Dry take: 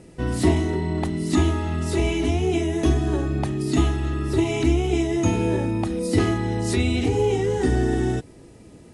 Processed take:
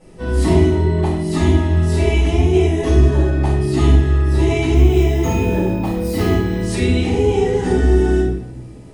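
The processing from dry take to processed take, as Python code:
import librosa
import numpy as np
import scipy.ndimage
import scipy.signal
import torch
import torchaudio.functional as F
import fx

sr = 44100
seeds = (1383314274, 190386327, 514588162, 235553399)

y = fx.resample_bad(x, sr, factor=2, down='none', up='hold', at=(4.74, 6.61))
y = fx.room_shoebox(y, sr, seeds[0], volume_m3=230.0, walls='mixed', distance_m=5.5)
y = y * 10.0 ** (-10.0 / 20.0)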